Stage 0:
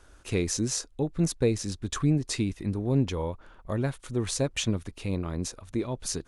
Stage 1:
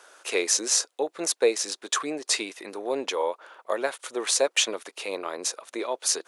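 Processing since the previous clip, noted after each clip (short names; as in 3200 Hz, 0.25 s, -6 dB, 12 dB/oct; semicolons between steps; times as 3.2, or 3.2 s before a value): HPF 470 Hz 24 dB/oct; gain +8.5 dB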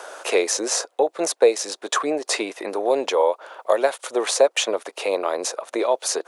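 bell 640 Hz +11 dB 1.6 oct; three-band squash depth 40%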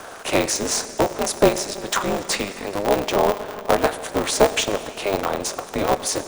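reverb RT60 2.9 s, pre-delay 4 ms, DRR 10 dB; polarity switched at an audio rate 100 Hz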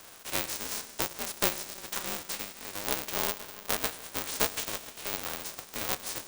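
spectral whitening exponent 0.3; gain -12.5 dB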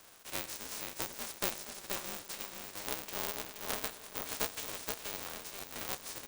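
feedback echo 0.475 s, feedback 22%, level -4.5 dB; gain -7.5 dB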